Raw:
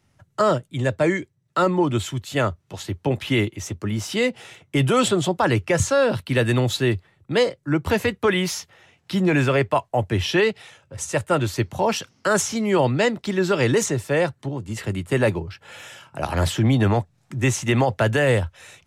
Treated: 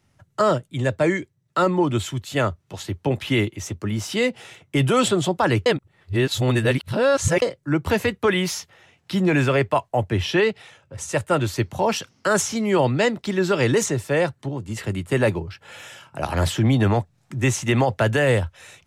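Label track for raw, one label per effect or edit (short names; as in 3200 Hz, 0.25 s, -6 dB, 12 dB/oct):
5.660000	7.420000	reverse
10.030000	11.050000	high shelf 4500 Hz -4.5 dB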